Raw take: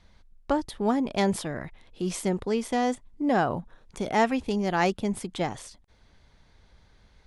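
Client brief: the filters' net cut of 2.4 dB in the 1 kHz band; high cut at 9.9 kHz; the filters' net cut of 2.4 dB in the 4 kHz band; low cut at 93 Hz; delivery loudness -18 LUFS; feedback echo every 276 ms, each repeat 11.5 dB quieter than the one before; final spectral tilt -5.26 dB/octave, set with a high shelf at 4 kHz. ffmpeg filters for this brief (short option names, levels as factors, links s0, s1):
-af "highpass=93,lowpass=9900,equalizer=f=1000:t=o:g=-3.5,highshelf=f=4000:g=5,equalizer=f=4000:t=o:g=-6,aecho=1:1:276|552|828:0.266|0.0718|0.0194,volume=3.35"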